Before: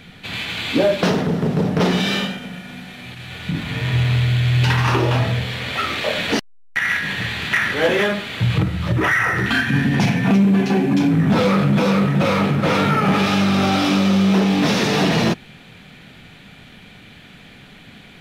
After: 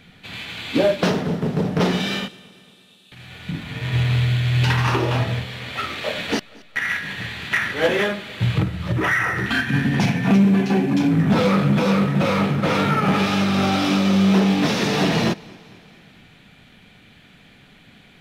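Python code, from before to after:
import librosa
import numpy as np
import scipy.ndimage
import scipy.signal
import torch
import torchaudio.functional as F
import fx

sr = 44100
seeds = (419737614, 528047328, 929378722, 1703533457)

y = fx.cheby_ripple_highpass(x, sr, hz=2600.0, ripple_db=9, at=(2.28, 3.12))
y = fx.echo_feedback(y, sr, ms=226, feedback_pct=58, wet_db=-20.0)
y = fx.upward_expand(y, sr, threshold_db=-25.0, expansion=1.5)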